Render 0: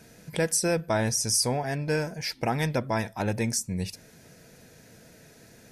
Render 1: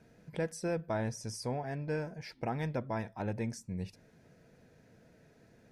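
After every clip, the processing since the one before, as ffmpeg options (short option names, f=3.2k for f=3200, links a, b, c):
-af "lowpass=f=1.5k:p=1,volume=-7.5dB"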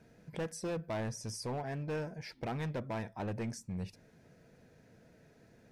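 -af "asoftclip=type=hard:threshold=-32.5dB"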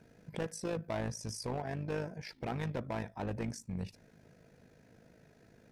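-af "tremolo=f=52:d=0.621,volume=3dB"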